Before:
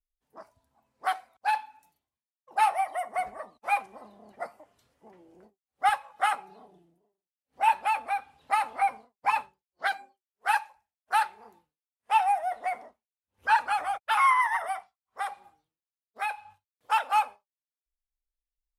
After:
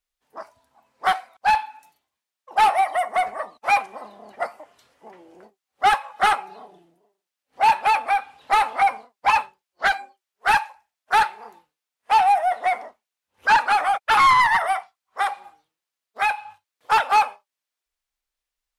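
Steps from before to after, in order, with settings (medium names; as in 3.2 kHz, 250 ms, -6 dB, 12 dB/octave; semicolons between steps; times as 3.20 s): overdrive pedal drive 15 dB, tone 5.6 kHz, clips at -11.5 dBFS; trim +3 dB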